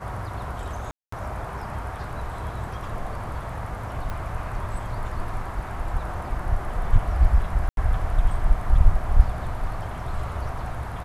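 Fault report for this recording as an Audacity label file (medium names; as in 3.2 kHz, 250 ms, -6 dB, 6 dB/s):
0.910000	1.120000	dropout 214 ms
4.100000	4.100000	pop -19 dBFS
7.690000	7.770000	dropout 82 ms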